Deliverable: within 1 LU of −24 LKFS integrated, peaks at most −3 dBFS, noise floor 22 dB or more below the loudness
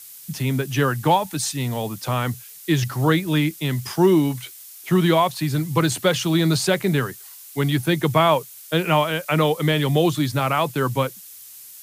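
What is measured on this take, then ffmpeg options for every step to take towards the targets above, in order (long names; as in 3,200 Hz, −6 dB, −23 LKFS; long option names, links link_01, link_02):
background noise floor −42 dBFS; target noise floor −43 dBFS; integrated loudness −21.0 LKFS; sample peak −4.0 dBFS; target loudness −24.0 LKFS
→ -af "afftdn=noise_reduction=6:noise_floor=-42"
-af "volume=-3dB"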